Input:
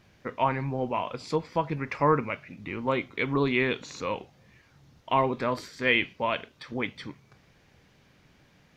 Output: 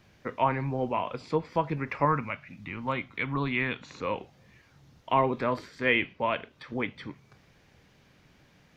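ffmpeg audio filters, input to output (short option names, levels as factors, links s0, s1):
-filter_complex "[0:a]asettb=1/sr,asplit=3[s0][s1][s2];[s0]atrim=end=2.054[s3];[s1]atrim=start=2.05:end=3.91,asetpts=PTS-STARTPTS,afade=t=in:d=0.004:c=qsin,afade=t=out:st=1.856:d=0.004:c=qsin,equalizer=f=410:t=o:w=1:g=-10.5[s4];[s2]atrim=start=3.906[s5];[s3][s4]acrossfade=d=0.004:c1=hsin:c2=qsin[s6];[s6][s5]acrossfade=d=0.004:c1=qsin:c2=hsin,acrossover=split=370|3300[s7][s8][s9];[s9]acompressor=threshold=0.00158:ratio=6[s10];[s7][s8][s10]amix=inputs=3:normalize=0"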